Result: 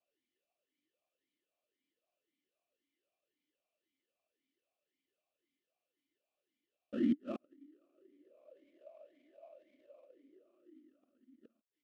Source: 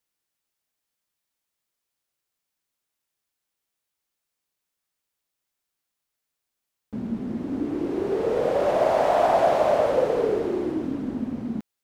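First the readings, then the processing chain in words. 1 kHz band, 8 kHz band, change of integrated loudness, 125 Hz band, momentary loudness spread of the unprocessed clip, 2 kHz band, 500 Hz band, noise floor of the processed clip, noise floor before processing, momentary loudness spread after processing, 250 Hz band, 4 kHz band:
-38.0 dB, no reading, -13.0 dB, -21.0 dB, 11 LU, -26.5 dB, -30.0 dB, under -85 dBFS, -83 dBFS, 12 LU, -13.0 dB, under -20 dB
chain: high-order bell 1.1 kHz -13.5 dB 1.1 oct; comb 3.4 ms, depth 83%; inverted gate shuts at -19 dBFS, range -41 dB; in parallel at -9.5 dB: sample-rate reducer 1.6 kHz, jitter 20%; on the sum: talking filter a-i 1.9 Hz; trim +6.5 dB

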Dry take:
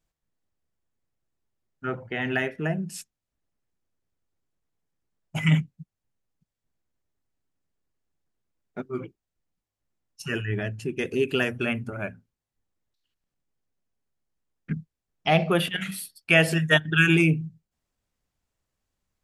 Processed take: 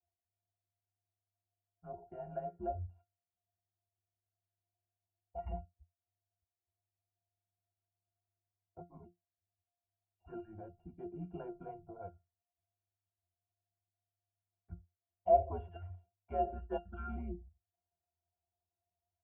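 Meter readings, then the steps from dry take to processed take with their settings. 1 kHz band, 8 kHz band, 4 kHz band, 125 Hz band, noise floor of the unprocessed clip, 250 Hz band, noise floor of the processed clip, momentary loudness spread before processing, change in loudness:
-5.5 dB, under -35 dB, under -40 dB, -21.5 dB, under -85 dBFS, -21.5 dB, under -85 dBFS, 17 LU, -15.0 dB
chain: cascade formant filter a; frequency shift -100 Hz; pitch-class resonator F, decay 0.16 s; trim +18 dB

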